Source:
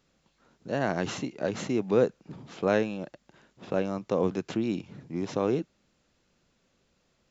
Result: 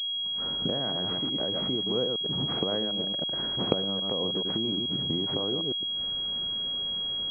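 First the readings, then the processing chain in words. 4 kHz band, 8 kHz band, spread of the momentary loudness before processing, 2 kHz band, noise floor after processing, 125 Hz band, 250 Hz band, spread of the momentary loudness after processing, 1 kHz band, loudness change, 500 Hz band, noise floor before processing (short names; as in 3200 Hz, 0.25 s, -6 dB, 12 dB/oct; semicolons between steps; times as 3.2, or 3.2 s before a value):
+23.5 dB, n/a, 14 LU, -8.5 dB, -32 dBFS, 0.0 dB, -2.0 dB, 2 LU, -3.5 dB, +2.0 dB, -4.5 dB, -72 dBFS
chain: reverse delay 0.108 s, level -6.5 dB; recorder AGC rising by 73 dB/s; pulse-width modulation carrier 3300 Hz; gain -7.5 dB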